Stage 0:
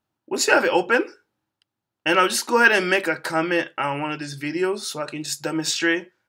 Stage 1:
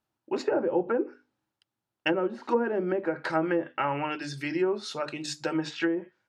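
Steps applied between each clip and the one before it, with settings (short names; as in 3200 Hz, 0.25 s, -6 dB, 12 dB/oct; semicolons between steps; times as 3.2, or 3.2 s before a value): notches 50/100/150/200/250/300 Hz; treble ducked by the level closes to 500 Hz, closed at -16 dBFS; gain -3 dB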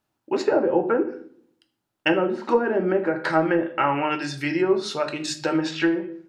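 reverb RT60 0.60 s, pre-delay 7 ms, DRR 7 dB; gain +5.5 dB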